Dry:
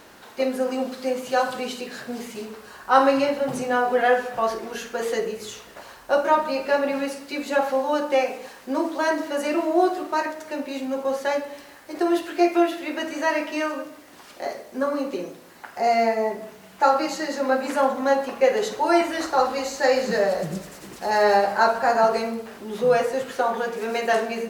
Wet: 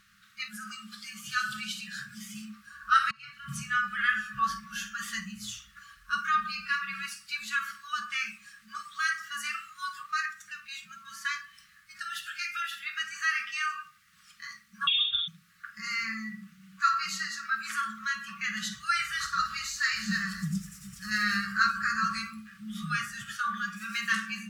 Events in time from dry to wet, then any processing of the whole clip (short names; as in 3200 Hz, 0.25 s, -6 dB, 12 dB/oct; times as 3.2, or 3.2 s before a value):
3.11–3.56 fade in linear
14.87–15.28 inverted band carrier 3900 Hz
whole clip: spectral noise reduction 11 dB; FFT band-reject 220–1100 Hz; high shelf 9700 Hz -4 dB